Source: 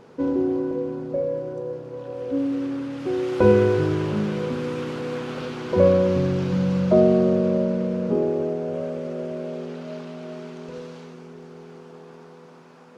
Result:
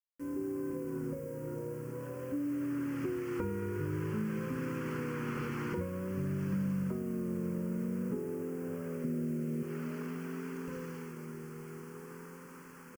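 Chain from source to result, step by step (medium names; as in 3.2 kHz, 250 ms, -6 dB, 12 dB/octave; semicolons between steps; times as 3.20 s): fade-in on the opening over 1.09 s; vibrato 0.5 Hz 74 cents; 9.04–9.63 s: ten-band graphic EQ 125 Hz +8 dB, 250 Hz +9 dB, 1 kHz -7 dB; reverberation RT60 1.2 s, pre-delay 3 ms, DRR 15 dB; compression 12:1, threshold -29 dBFS, peak gain reduction 18.5 dB; bit crusher 9-bit; static phaser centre 1.6 kHz, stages 4; frequency-shifting echo 453 ms, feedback 33%, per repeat +72 Hz, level -19 dB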